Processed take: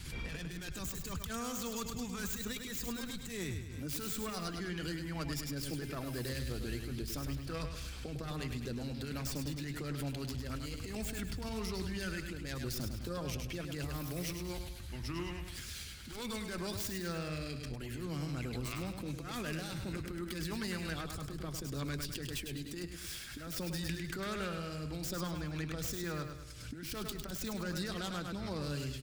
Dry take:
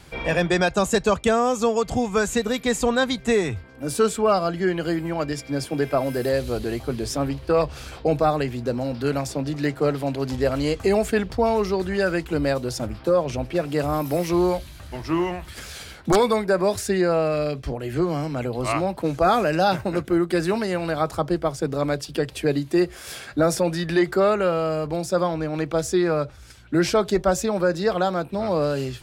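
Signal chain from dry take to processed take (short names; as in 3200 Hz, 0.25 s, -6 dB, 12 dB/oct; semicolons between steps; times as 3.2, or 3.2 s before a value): tracing distortion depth 0.25 ms; harmonic-percussive split percussive +6 dB; passive tone stack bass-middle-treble 6-0-2; negative-ratio compressor -42 dBFS, ratio -0.5; feedback echo 0.103 s, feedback 46%, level -7 dB; backwards sustainer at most 46 dB/s; gain +2.5 dB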